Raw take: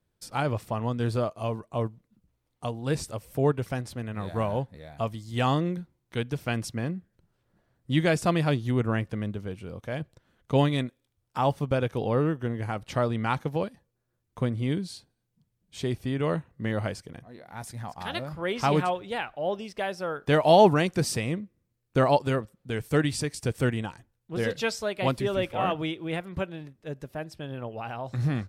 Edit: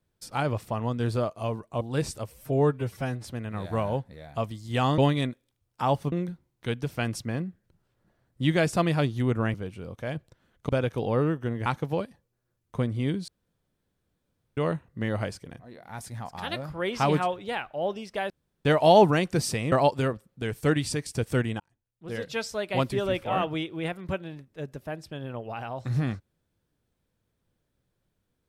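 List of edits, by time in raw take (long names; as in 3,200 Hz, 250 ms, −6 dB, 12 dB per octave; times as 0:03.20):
0:01.81–0:02.74: remove
0:03.27–0:03.87: time-stretch 1.5×
0:09.03–0:09.39: remove
0:10.54–0:11.68: move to 0:05.61
0:12.65–0:13.29: remove
0:14.91–0:16.20: fill with room tone
0:19.93–0:20.28: fill with room tone
0:21.35–0:22.00: remove
0:23.88–0:24.98: fade in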